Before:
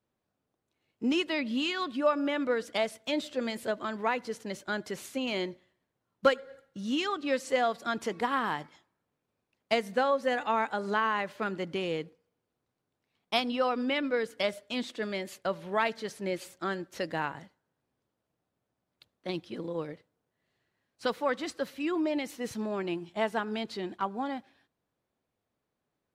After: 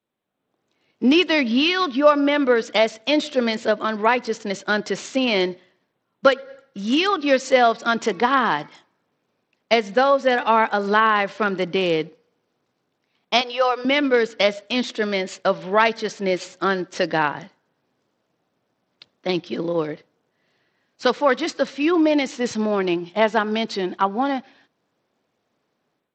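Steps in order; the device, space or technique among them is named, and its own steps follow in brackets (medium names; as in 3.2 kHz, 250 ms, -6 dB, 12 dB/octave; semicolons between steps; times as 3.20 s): 13.41–13.85 s: high-pass 450 Hz 24 dB/octave; Bluetooth headset (high-pass 160 Hz 12 dB/octave; level rider gain up to 12.5 dB; resampled via 16 kHz; SBC 64 kbps 32 kHz)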